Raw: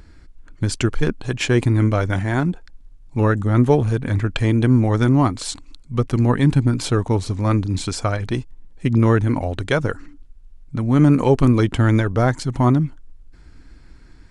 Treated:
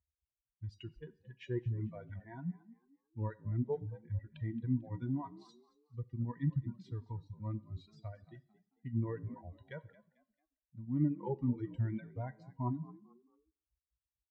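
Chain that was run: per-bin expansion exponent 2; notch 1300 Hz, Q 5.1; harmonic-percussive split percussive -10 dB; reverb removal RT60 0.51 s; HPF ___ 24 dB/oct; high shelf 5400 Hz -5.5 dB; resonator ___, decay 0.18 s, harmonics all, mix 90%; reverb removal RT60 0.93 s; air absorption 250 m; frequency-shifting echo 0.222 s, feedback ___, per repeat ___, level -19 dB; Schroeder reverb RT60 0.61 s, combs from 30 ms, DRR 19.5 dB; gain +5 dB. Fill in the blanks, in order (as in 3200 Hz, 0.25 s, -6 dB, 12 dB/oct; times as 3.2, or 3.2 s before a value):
59 Hz, 960 Hz, 31%, +53 Hz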